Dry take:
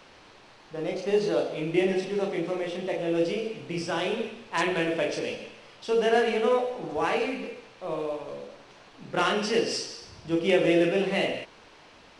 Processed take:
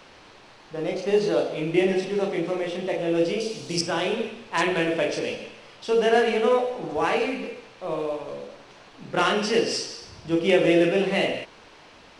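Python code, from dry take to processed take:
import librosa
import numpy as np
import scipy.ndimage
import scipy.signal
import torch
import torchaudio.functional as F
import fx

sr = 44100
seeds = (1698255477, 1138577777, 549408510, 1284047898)

y = fx.high_shelf_res(x, sr, hz=3500.0, db=13.0, q=1.5, at=(3.4, 3.81))
y = y * librosa.db_to_amplitude(3.0)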